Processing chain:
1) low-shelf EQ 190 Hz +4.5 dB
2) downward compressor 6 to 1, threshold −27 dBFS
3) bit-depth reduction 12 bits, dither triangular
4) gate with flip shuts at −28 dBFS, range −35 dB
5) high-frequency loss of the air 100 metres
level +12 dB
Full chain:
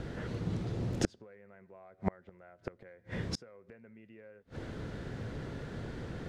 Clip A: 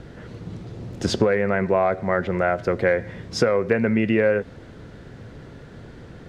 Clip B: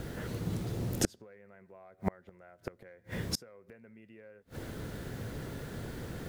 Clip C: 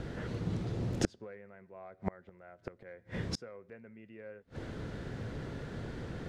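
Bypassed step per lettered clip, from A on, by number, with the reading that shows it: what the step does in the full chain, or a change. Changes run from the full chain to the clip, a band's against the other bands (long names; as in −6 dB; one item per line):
4, change in crest factor −9.0 dB
5, 8 kHz band +8.0 dB
2, change in momentary loudness spread −3 LU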